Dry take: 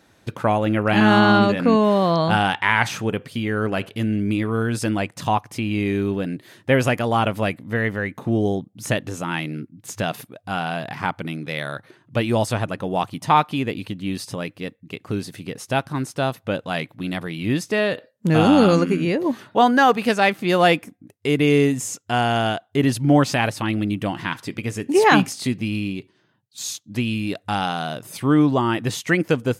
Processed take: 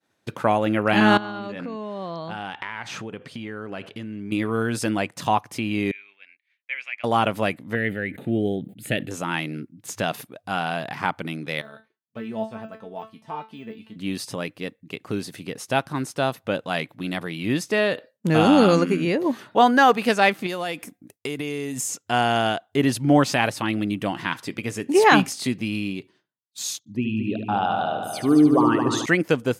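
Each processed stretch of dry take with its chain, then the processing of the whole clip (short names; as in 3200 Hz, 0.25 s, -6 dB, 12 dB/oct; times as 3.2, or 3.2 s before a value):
1.17–4.32 compressor 10:1, threshold -27 dBFS + air absorption 55 m
5.91–7.04 ladder band-pass 2400 Hz, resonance 80% + tilt -2 dB/oct
7.75–9.11 fixed phaser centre 2500 Hz, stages 4 + sustainer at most 120 dB/s
11.61–13.96 de-esser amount 90% + high shelf 5100 Hz -10.5 dB + resonator 220 Hz, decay 0.25 s, mix 90%
20.46–21.9 high shelf 4200 Hz +8 dB + compressor 12:1, threshold -23 dBFS
26.79–29.06 formant sharpening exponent 2 + multi-head echo 73 ms, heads first and third, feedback 55%, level -8 dB
whole clip: HPF 88 Hz; expander -47 dBFS; low shelf 130 Hz -7.5 dB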